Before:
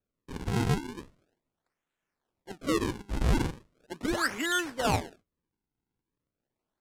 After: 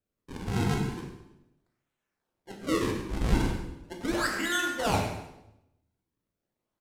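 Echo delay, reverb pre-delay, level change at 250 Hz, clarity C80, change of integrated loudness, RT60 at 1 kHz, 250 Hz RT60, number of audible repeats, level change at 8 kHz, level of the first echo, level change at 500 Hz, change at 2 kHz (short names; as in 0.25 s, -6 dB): 0.1 s, 13 ms, +1.0 dB, 6.0 dB, +0.5 dB, 0.85 s, 1.0 s, 1, +0.5 dB, -12.0 dB, +1.0 dB, +1.0 dB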